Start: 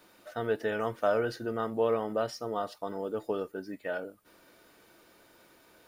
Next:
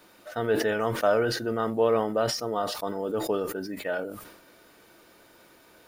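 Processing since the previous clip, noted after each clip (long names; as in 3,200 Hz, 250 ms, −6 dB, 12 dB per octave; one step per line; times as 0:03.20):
level that may fall only so fast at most 60 dB per second
level +4 dB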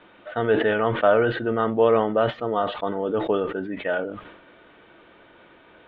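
elliptic low-pass filter 3,400 Hz, stop band 40 dB
level +5.5 dB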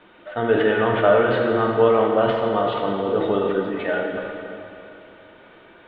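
dense smooth reverb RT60 2.8 s, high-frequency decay 1×, DRR 0 dB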